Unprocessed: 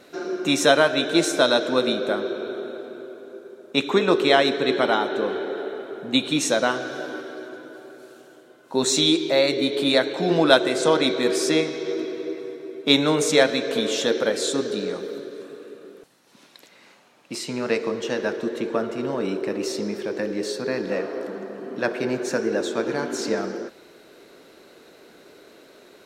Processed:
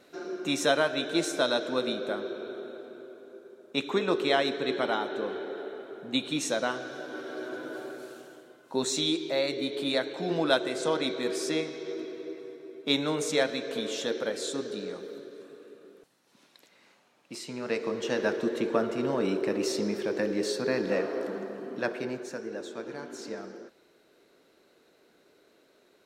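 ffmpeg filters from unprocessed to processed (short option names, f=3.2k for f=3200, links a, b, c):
-af "volume=10.5dB,afade=t=in:st=7.08:d=0.72:silence=0.266073,afade=t=out:st=7.8:d=1.09:silence=0.237137,afade=t=in:st=17.61:d=0.67:silence=0.446684,afade=t=out:st=21.36:d=0.96:silence=0.266073"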